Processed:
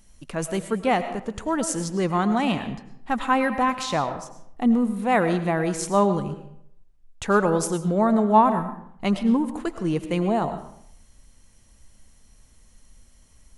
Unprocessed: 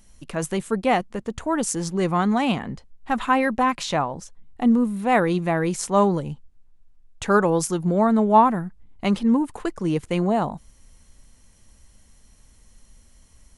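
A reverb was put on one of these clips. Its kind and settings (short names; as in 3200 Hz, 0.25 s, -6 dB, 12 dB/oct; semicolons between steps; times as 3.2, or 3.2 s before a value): digital reverb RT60 0.68 s, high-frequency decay 0.7×, pre-delay 65 ms, DRR 10 dB; gain -1.5 dB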